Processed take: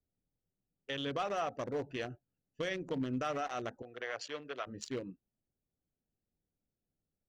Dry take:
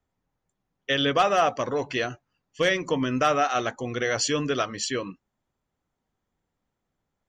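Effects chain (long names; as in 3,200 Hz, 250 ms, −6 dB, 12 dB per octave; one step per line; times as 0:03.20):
adaptive Wiener filter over 41 samples
0:03.82–0:04.67: three-way crossover with the lows and the highs turned down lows −20 dB, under 510 Hz, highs −17 dB, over 3,900 Hz
brickwall limiter −19.5 dBFS, peak gain reduction 8 dB
level −7.5 dB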